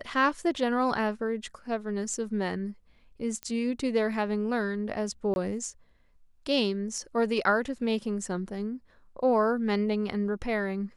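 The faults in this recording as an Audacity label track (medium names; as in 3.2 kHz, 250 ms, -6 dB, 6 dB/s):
3.430000	3.430000	pop -21 dBFS
5.340000	5.360000	dropout 21 ms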